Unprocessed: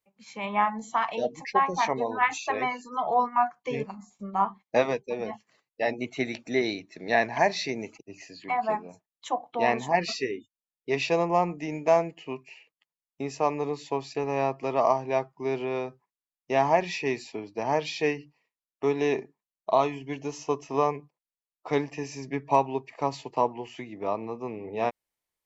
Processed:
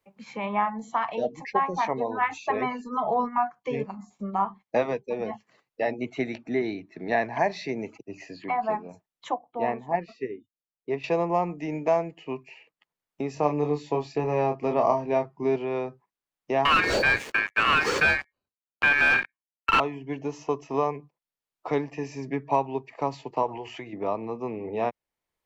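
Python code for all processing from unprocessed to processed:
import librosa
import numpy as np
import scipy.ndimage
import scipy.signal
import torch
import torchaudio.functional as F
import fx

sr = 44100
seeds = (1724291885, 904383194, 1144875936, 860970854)

y = fx.chain(x, sr, fx.low_shelf(hz=260.0, db=6.5),
    fx.comb(ms=4.7, depth=0.38), at=(2.43, 3.38))
y = fx.chain(y, sr, fx.lowpass(hz=2400.0, slope=6),
    fx.peak_eq(hz=530.0, db=-12.5, octaves=0.22), at=(6.38, 7.12))
y = fx.chain(y, sr, fx.peak_eq(hz=6300.0, db=-12.5, octaves=2.5),
    fx.upward_expand(threshold_db=-39.0, expansion=1.5), at=(9.34, 11.04))
y = fx.chain(y, sr, fx.low_shelf(hz=300.0, db=7.0),
    fx.doubler(ms=27.0, db=-5.5), at=(13.34, 15.56))
y = fx.chain(y, sr, fx.leveller(passes=5),
    fx.ring_mod(carrier_hz=2000.0), at=(16.65, 19.8))
y = fx.chain(y, sr, fx.peak_eq(hz=200.0, db=-11.5, octaves=1.1),
    fx.pre_swell(db_per_s=21.0), at=(23.42, 23.93))
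y = fx.high_shelf(y, sr, hz=3300.0, db=-11.0)
y = fx.band_squash(y, sr, depth_pct=40)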